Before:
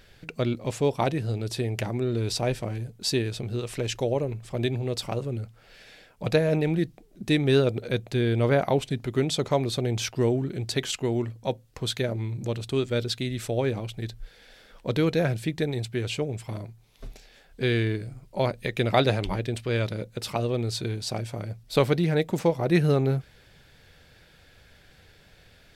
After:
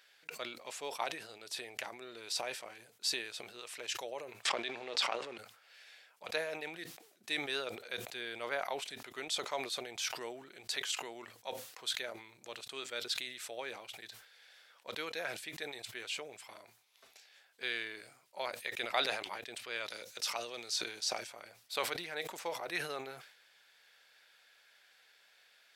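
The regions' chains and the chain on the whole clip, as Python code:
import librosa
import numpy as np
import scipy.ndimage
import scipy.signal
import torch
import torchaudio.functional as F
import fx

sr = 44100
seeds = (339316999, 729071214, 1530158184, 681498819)

y = fx.chain(x, sr, fx.law_mismatch(coded='A'),
    fx.bandpass_edges(low_hz=170.0, high_hz=4700.0),
    fx.env_flatten(amount_pct=100), at=(4.45, 5.38))
y = fx.chain(y, sr, fx.peak_eq(hz=5800.0, db=8.0, octaves=0.53),
    fx.notch(hz=1100.0, q=25.0),
    fx.band_squash(depth_pct=40), at=(19.9, 21.27))
y = scipy.signal.sosfilt(scipy.signal.butter(2, 970.0, 'highpass', fs=sr, output='sos'), y)
y = fx.sustainer(y, sr, db_per_s=80.0)
y = y * librosa.db_to_amplitude(-6.0)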